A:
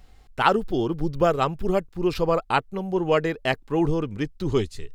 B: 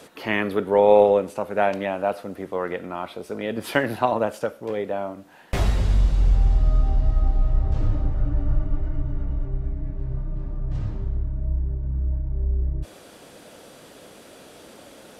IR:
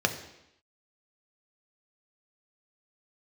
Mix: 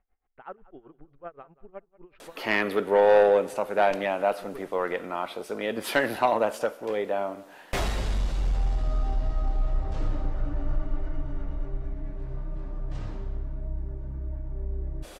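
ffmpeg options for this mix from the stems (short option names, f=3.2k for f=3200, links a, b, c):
-filter_complex "[0:a]lowpass=f=2.1k:w=0.5412,lowpass=f=2.1k:w=1.3066,aeval=exprs='val(0)*pow(10,-20*(0.5-0.5*cos(2*PI*7.9*n/s))/20)':c=same,volume=-15.5dB,asplit=2[a][b];[b]volume=-20.5dB[c];[1:a]asoftclip=type=tanh:threshold=-10.5dB,adelay=2200,volume=1.5dB,asplit=2[d][e];[e]volume=-22dB[f];[c][f]amix=inputs=2:normalize=0,aecho=0:1:184|368|552|736|920:1|0.37|0.137|0.0507|0.0187[g];[a][d][g]amix=inputs=3:normalize=0,equalizer=f=87:t=o:w=2.9:g=-12"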